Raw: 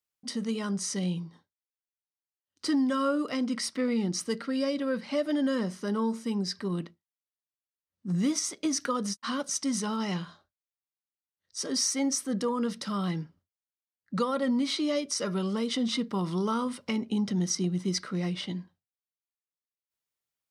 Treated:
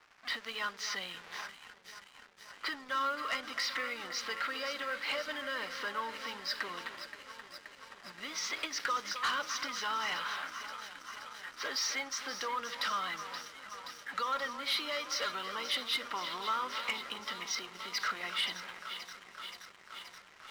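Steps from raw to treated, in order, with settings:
converter with a step at zero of −42 dBFS
low-pass that shuts in the quiet parts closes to 1,800 Hz, open at −27 dBFS
low-pass filter 4,400 Hz 24 dB per octave
low-pass that shuts in the quiet parts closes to 2,100 Hz, open at −24 dBFS
downward compressor 5 to 1, threshold −35 dBFS, peak gain reduction 11.5 dB
dynamic equaliser 1,600 Hz, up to +4 dB, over −57 dBFS, Q 0.99
high-pass filter 1,100 Hz 12 dB per octave
delay that swaps between a low-pass and a high-pass 263 ms, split 1,600 Hz, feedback 87%, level −11 dB
leveller curve on the samples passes 3
level −2 dB

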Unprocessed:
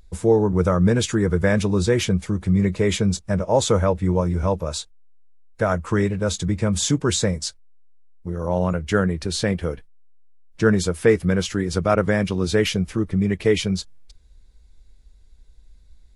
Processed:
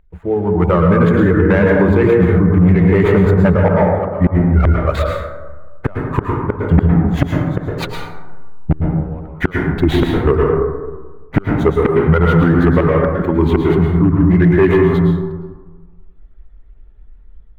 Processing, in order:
running median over 15 samples
source passing by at 0:07.21, 14 m/s, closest 10 metres
mains-hum notches 60/120/180/240 Hz
reverb reduction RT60 1.3 s
automatic gain control gain up to 13.5 dB
gate with flip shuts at −12 dBFS, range −38 dB
gain into a clipping stage and back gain 18.5 dB
high shelf with overshoot 3,900 Hz −14 dB, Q 1.5
dense smooth reverb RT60 1.3 s, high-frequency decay 0.35×, pre-delay 90 ms, DRR −0.5 dB
wrong playback speed 48 kHz file played as 44.1 kHz
boost into a limiter +19 dB
level −2.5 dB

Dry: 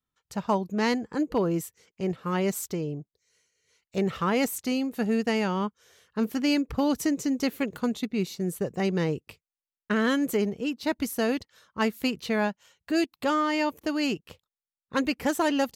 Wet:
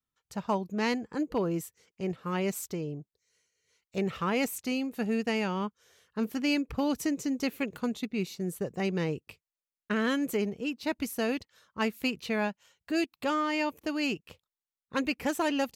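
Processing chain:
dynamic equaliser 2,500 Hz, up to +6 dB, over −52 dBFS, Q 4.7
level −4 dB

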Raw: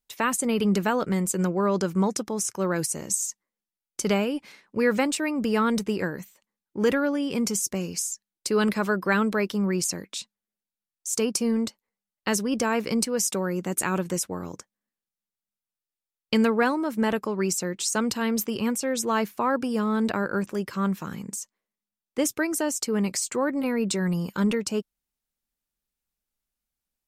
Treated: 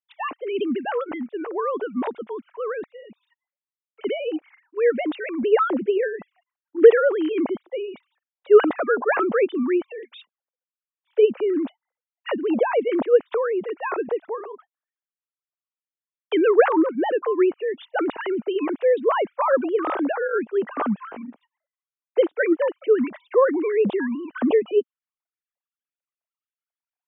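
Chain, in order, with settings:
three sine waves on the formant tracks
parametric band 630 Hz +4 dB 2.5 octaves, from 0:05.43 +12 dB
level −4.5 dB

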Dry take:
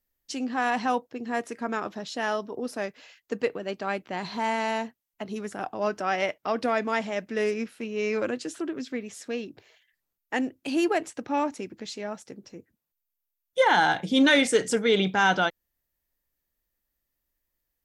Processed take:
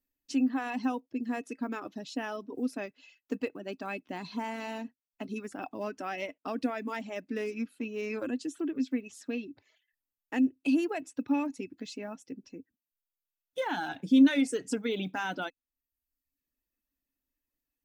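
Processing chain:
one scale factor per block 7 bits
reverb reduction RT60 0.82 s
downward compressor 2 to 1, threshold −28 dBFS, peak gain reduction 7 dB
hollow resonant body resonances 270/2,600 Hz, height 15 dB, ringing for 65 ms
level −6.5 dB

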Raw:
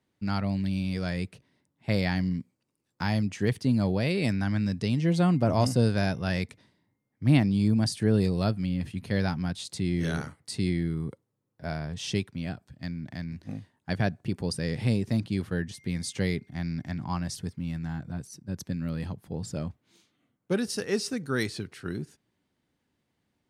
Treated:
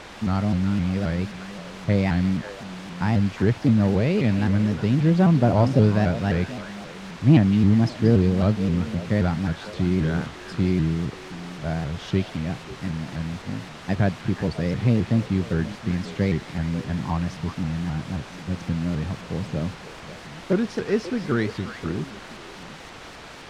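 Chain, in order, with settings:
echo through a band-pass that steps 180 ms, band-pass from 3,600 Hz, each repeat −1.4 octaves, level −5 dB
bit-depth reduction 6 bits, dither triangular
head-to-tape spacing loss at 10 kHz 29 dB
pitch modulation by a square or saw wave saw up 3.8 Hz, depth 160 cents
level +6.5 dB

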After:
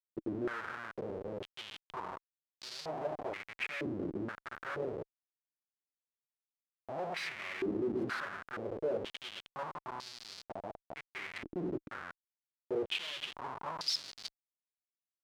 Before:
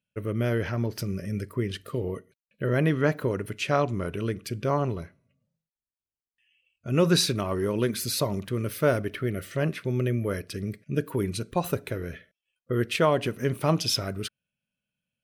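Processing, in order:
0:06.90–0:07.43: comb filter 1.7 ms, depth 42%
0:09.60–0:11.03: downward compressor 2 to 1, threshold −30 dBFS, peak gain reduction 6 dB
delay with a low-pass on its return 119 ms, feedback 72%, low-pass 480 Hz, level −16 dB
convolution reverb RT60 0.30 s, pre-delay 5 ms, DRR 8 dB
comparator with hysteresis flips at −28.5 dBFS
band-pass on a step sequencer 2.1 Hz 320–4,600 Hz
level +2 dB

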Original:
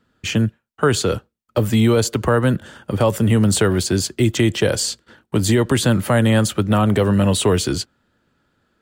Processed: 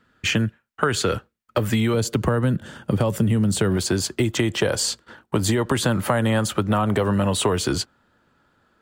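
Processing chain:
parametric band 1,700 Hz +6.5 dB 1.5 octaves, from 0:01.94 160 Hz, from 0:03.77 1,000 Hz
downward compressor, threshold −17 dBFS, peak gain reduction 9.5 dB

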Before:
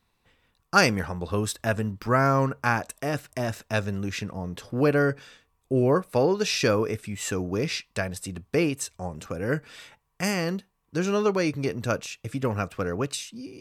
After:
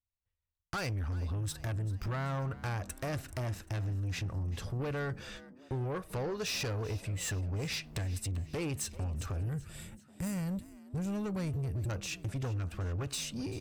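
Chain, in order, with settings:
noise gate −52 dBFS, range −39 dB
gain on a spectral selection 0:09.40–0:11.90, 230–7,000 Hz −13 dB
low shelf with overshoot 130 Hz +14 dB, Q 1.5
in parallel at −2 dB: brickwall limiter −16 dBFS, peak gain reduction 11.5 dB
on the sum: downward compressor 6 to 1, threshold −28 dBFS, peak gain reduction 15.5 dB
soft clipping −31.5 dBFS, distortion −11 dB
on a send: echo with shifted repeats 389 ms, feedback 51%, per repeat +63 Hz, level −18.5 dB

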